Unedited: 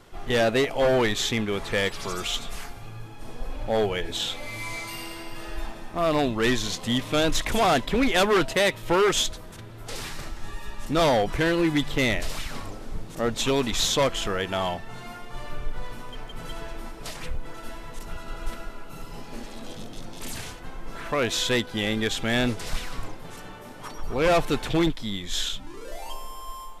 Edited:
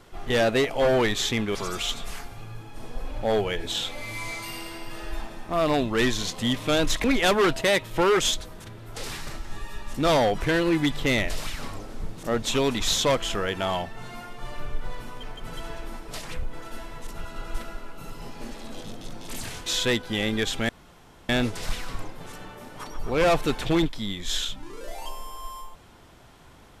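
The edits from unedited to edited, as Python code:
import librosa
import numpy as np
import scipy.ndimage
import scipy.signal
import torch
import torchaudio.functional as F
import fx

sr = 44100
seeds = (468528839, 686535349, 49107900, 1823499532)

y = fx.edit(x, sr, fx.cut(start_s=1.55, length_s=0.45),
    fx.cut(start_s=7.49, length_s=0.47),
    fx.cut(start_s=20.58, length_s=0.72),
    fx.insert_room_tone(at_s=22.33, length_s=0.6), tone=tone)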